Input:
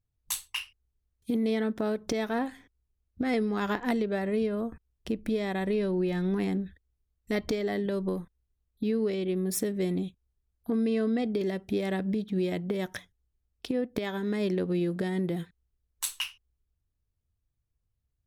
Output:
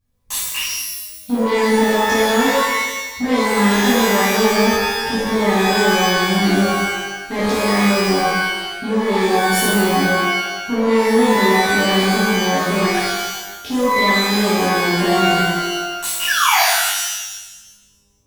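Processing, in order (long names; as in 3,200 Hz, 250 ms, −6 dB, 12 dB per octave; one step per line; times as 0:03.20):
sound drawn into the spectrogram fall, 0:16.27–0:16.61, 650–1,800 Hz −25 dBFS
soft clipping −29.5 dBFS, distortion −11 dB
reverb with rising layers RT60 1.1 s, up +12 semitones, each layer −2 dB, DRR −10 dB
level +5 dB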